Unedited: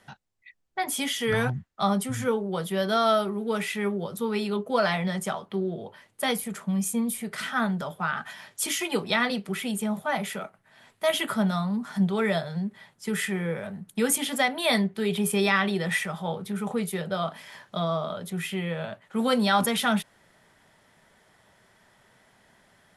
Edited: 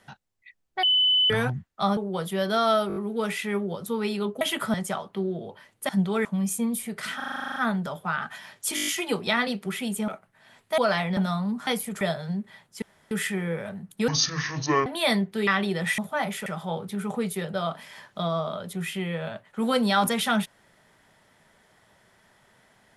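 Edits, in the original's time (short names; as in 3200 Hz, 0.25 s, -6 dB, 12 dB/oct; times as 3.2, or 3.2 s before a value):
0.83–1.3 bleep 3010 Hz -17.5 dBFS
1.97–2.36 cut
3.27 stutter 0.02 s, 5 plays
4.72–5.11 swap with 11.09–11.42
6.26–6.6 swap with 11.92–12.28
7.51 stutter 0.04 s, 11 plays
8.7 stutter 0.02 s, 7 plays
9.91–10.39 move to 16.03
13.09 insert room tone 0.29 s
14.06–14.49 speed 55%
15.1–15.52 cut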